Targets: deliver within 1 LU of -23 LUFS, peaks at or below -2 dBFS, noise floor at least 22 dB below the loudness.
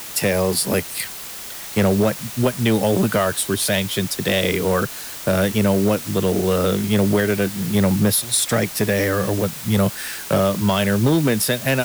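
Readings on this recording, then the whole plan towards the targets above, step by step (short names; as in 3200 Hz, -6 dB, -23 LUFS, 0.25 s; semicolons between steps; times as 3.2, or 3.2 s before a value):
clipped 1.2%; flat tops at -11.0 dBFS; noise floor -33 dBFS; noise floor target -42 dBFS; loudness -19.5 LUFS; peak -11.0 dBFS; loudness target -23.0 LUFS
-> clip repair -11 dBFS; noise print and reduce 9 dB; gain -3.5 dB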